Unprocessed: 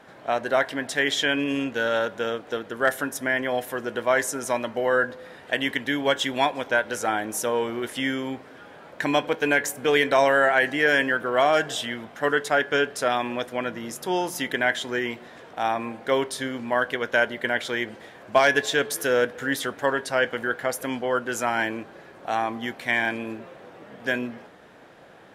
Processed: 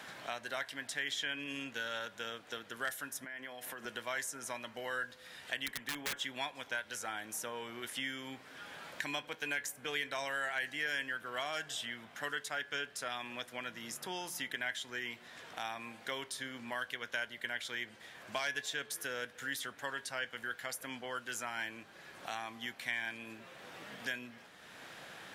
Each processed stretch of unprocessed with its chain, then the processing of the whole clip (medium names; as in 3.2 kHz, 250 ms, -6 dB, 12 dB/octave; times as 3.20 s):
3.24–3.85 s: high-pass 130 Hz 24 dB/octave + compression 10:1, threshold -31 dBFS
5.66–6.19 s: peaking EQ 4.2 kHz -4.5 dB 0.63 oct + integer overflow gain 17 dB
whole clip: amplifier tone stack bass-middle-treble 5-5-5; three bands compressed up and down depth 70%; trim -2.5 dB